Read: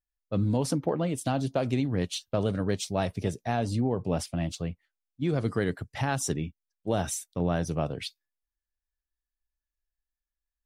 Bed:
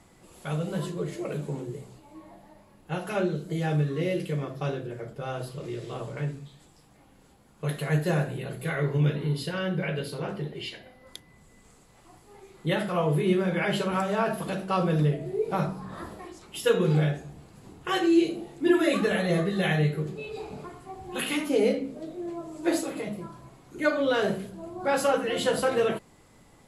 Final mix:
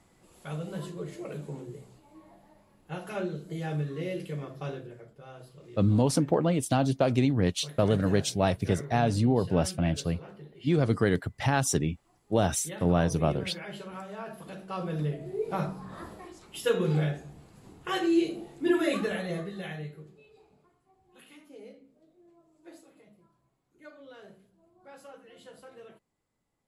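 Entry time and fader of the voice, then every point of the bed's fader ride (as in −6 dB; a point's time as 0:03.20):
5.45 s, +3.0 dB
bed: 0:04.78 −6 dB
0:05.12 −14 dB
0:14.23 −14 dB
0:15.45 −3.5 dB
0:18.92 −3.5 dB
0:20.62 −25 dB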